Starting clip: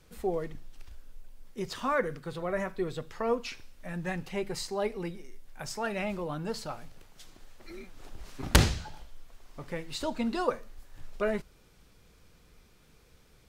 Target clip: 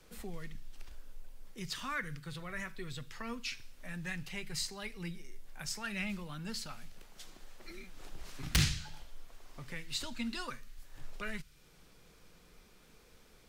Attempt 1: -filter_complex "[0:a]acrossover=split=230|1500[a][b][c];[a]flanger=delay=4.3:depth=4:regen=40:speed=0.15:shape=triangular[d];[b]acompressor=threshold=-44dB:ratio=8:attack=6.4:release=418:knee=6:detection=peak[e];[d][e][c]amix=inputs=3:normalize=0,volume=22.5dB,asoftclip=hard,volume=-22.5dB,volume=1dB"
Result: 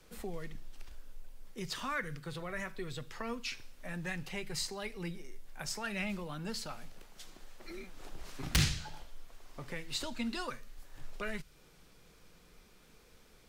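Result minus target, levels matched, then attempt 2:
compressor: peak gain reduction -9 dB
-filter_complex "[0:a]acrossover=split=230|1500[a][b][c];[a]flanger=delay=4.3:depth=4:regen=40:speed=0.15:shape=triangular[d];[b]acompressor=threshold=-54dB:ratio=8:attack=6.4:release=418:knee=6:detection=peak[e];[d][e][c]amix=inputs=3:normalize=0,volume=22.5dB,asoftclip=hard,volume=-22.5dB,volume=1dB"

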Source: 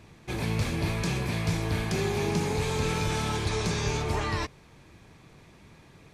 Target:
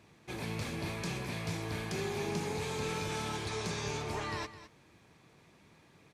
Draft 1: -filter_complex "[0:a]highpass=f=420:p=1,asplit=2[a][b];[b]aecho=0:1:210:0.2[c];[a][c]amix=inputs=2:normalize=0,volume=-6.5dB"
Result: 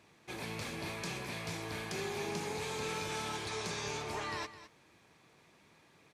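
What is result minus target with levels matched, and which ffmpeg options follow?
125 Hz band -4.5 dB
-filter_complex "[0:a]highpass=f=160:p=1,asplit=2[a][b];[b]aecho=0:1:210:0.2[c];[a][c]amix=inputs=2:normalize=0,volume=-6.5dB"

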